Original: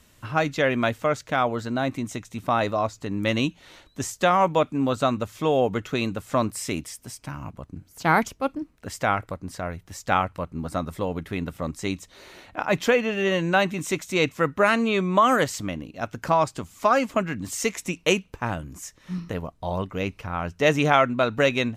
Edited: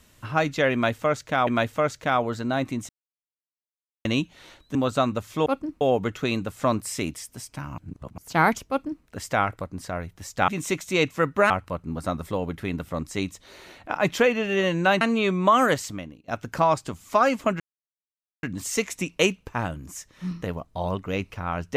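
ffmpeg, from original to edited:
-filter_complex "[0:a]asplit=14[s0][s1][s2][s3][s4][s5][s6][s7][s8][s9][s10][s11][s12][s13];[s0]atrim=end=1.472[s14];[s1]atrim=start=0.728:end=2.15,asetpts=PTS-STARTPTS,afade=t=out:st=1.418:d=0.004:c=hsin[s15];[s2]atrim=start=2.15:end=3.31,asetpts=PTS-STARTPTS,volume=0[s16];[s3]atrim=start=3.31:end=4.012,asetpts=PTS-STARTPTS,afade=t=in:d=0.004:c=hsin[s17];[s4]atrim=start=4.798:end=5.512[s18];[s5]atrim=start=8.388:end=8.742[s19];[s6]atrim=start=5.508:end=7.482[s20];[s7]atrim=start=7.478:end=7.882,asetpts=PTS-STARTPTS,areverse[s21];[s8]atrim=start=7.878:end=10.182[s22];[s9]atrim=start=13.688:end=14.712[s23];[s10]atrim=start=10.178:end=13.692[s24];[s11]atrim=start=14.708:end=15.98,asetpts=PTS-STARTPTS,afade=t=out:st=0.722:d=0.55:silence=0.105925[s25];[s12]atrim=start=15.98:end=17.3,asetpts=PTS-STARTPTS,afade=t=in:d=0.004:c=hsin:silence=0.105925,afade=t=out:st=1.316:d=0.004:c=hsin,apad=pad_dur=0.83[s26];[s13]atrim=start=17.3,asetpts=PTS-STARTPTS,afade=t=in:d=0.004:c=hsin[s27];[s15][s16][s17]concat=n=3:v=0:a=1[s28];[s14][s28]acrossfade=d=0.004:c1=hsin:c2=hsin[s29];[s29][s18]acrossfade=d=0.004:c1=hsin:c2=hsin[s30];[s30][s19]acrossfade=d=0.004:c1=hsin:c2=hsin[s31];[s31][s20]acrossfade=d=0.004:c1=hsin:c2=hsin[s32];[s32][s21]acrossfade=d=0.004:c1=hsin:c2=hsin[s33];[s33][s22]acrossfade=d=0.004:c1=hsin:c2=hsin[s34];[s34][s23]acrossfade=d=0.004:c1=hsin:c2=hsin[s35];[s35][s24]acrossfade=d=0.004:c1=hsin:c2=hsin[s36];[s25][s26][s27]concat=n=3:v=0:a=1[s37];[s36][s37]acrossfade=d=0.004:c1=hsin:c2=hsin"

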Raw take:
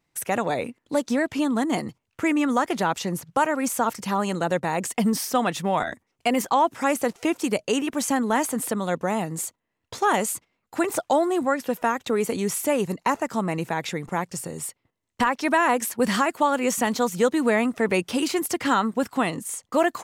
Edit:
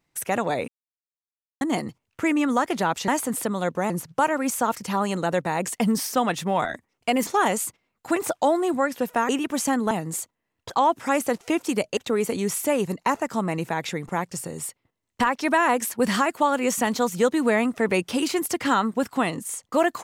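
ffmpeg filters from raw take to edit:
-filter_complex "[0:a]asplit=10[s0][s1][s2][s3][s4][s5][s6][s7][s8][s9];[s0]atrim=end=0.68,asetpts=PTS-STARTPTS,afade=t=out:st=0.676:d=0.004:c=hsin[s10];[s1]atrim=start=0.68:end=1.61,asetpts=PTS-STARTPTS,volume=0[s11];[s2]atrim=start=1.61:end=3.082,asetpts=PTS-STARTPTS,afade=t=in:d=0.004:c=hsin[s12];[s3]atrim=start=8.338:end=9.162[s13];[s4]atrim=start=3.078:end=6.452[s14];[s5]atrim=start=9.948:end=11.972[s15];[s6]atrim=start=7.718:end=8.342[s16];[s7]atrim=start=9.158:end=9.952[s17];[s8]atrim=start=6.448:end=7.722[s18];[s9]atrim=start=11.968[s19];[s10][s11][s12]concat=n=3:v=0:a=1[s20];[s20][s13]acrossfade=d=0.004:c1=hsin:c2=hsin[s21];[s21][s14]acrossfade=d=0.004:c1=hsin:c2=hsin[s22];[s22][s15]acrossfade=d=0.004:c1=hsin:c2=hsin[s23];[s23][s16]acrossfade=d=0.004:c1=hsin:c2=hsin[s24];[s24][s17]acrossfade=d=0.004:c1=hsin:c2=hsin[s25];[s25][s18]acrossfade=d=0.004:c1=hsin:c2=hsin[s26];[s26][s19]acrossfade=d=0.004:c1=hsin:c2=hsin"

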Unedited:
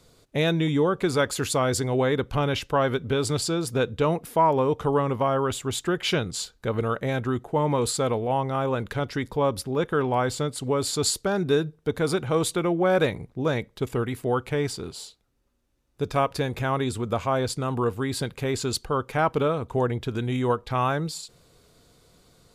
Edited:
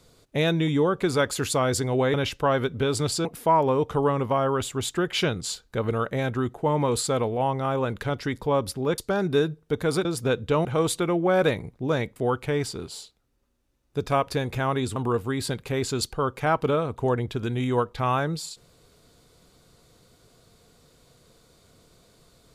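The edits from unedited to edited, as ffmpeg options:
-filter_complex "[0:a]asplit=8[s0][s1][s2][s3][s4][s5][s6][s7];[s0]atrim=end=2.142[s8];[s1]atrim=start=2.438:end=3.552[s9];[s2]atrim=start=4.148:end=9.882[s10];[s3]atrim=start=11.138:end=12.212[s11];[s4]atrim=start=3.548:end=4.152[s12];[s5]atrim=start=12.208:end=13.722[s13];[s6]atrim=start=14.198:end=17.002[s14];[s7]atrim=start=17.678[s15];[s8][s9]acrossfade=d=0.004:c1=hsin:c2=hsin[s16];[s16][s10]acrossfade=d=0.004:c1=hsin:c2=hsin[s17];[s17][s11]acrossfade=d=0.004:c1=hsin:c2=hsin[s18];[s18][s12]acrossfade=d=0.004:c1=hsin:c2=hsin[s19];[s19][s13]acrossfade=d=0.004:c1=hsin:c2=hsin[s20];[s20][s14]acrossfade=d=0.004:c1=hsin:c2=hsin[s21];[s21][s15]acrossfade=d=0.004:c1=hsin:c2=hsin"

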